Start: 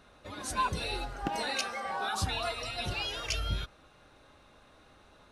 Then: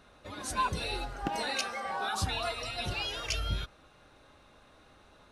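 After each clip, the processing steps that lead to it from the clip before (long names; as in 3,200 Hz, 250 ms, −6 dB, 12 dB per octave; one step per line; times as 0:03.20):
no processing that can be heard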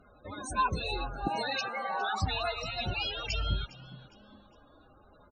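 spectral peaks only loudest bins 32
echo with shifted repeats 408 ms, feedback 35%, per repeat +78 Hz, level −19 dB
level +2 dB
AAC 96 kbit/s 32,000 Hz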